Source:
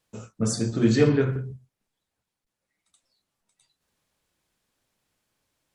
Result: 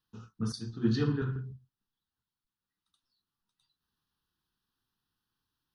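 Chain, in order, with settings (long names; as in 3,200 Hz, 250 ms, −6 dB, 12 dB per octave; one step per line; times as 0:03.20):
phaser with its sweep stopped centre 2,200 Hz, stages 6
0:00.52–0:01.22: multiband upward and downward expander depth 100%
level −6 dB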